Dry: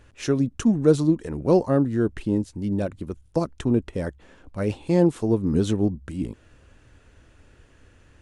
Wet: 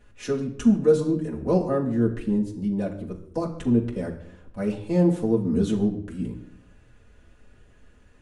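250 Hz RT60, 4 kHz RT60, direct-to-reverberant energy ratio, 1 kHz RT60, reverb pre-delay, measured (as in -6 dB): 0.95 s, 0.55 s, -4.0 dB, 0.60 s, 4 ms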